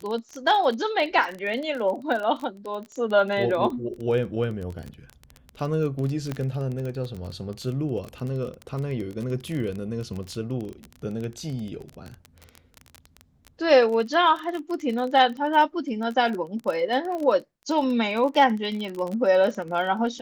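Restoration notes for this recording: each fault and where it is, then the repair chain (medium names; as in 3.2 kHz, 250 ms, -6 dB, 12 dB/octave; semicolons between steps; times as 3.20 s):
crackle 22 per s -29 dBFS
6.32 s: pop -16 dBFS
17.15 s: pop -22 dBFS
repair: de-click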